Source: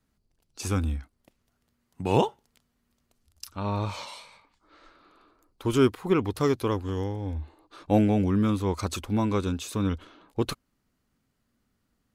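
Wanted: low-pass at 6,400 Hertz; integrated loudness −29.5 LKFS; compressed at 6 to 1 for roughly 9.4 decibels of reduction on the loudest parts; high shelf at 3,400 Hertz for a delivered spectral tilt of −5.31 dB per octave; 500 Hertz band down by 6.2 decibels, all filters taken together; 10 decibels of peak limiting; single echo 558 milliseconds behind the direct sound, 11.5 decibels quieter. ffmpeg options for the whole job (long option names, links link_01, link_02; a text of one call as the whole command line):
ffmpeg -i in.wav -af "lowpass=6400,equalizer=frequency=500:width_type=o:gain=-8.5,highshelf=frequency=3400:gain=3.5,acompressor=threshold=-29dB:ratio=6,alimiter=level_in=5dB:limit=-24dB:level=0:latency=1,volume=-5dB,aecho=1:1:558:0.266,volume=10.5dB" out.wav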